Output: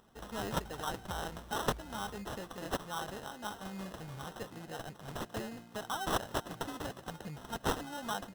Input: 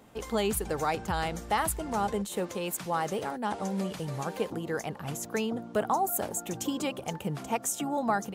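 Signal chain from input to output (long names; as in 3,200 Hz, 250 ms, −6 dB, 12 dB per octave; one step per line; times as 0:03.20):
guitar amp tone stack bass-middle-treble 5-5-5
sample-rate reduction 2,300 Hz, jitter 0%
on a send: repeating echo 377 ms, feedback 60%, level −22 dB
on the sum: level +5.5 dB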